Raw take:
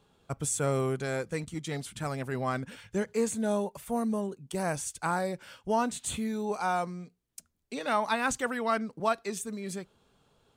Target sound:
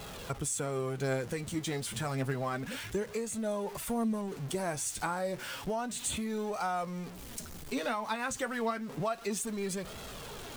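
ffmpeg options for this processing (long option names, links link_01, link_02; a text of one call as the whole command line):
ffmpeg -i in.wav -af "aeval=exprs='val(0)+0.5*0.00944*sgn(val(0))':channel_layout=same,acompressor=threshold=-32dB:ratio=10,flanger=delay=1.5:depth=8:regen=51:speed=0.3:shape=sinusoidal,volume=6dB" out.wav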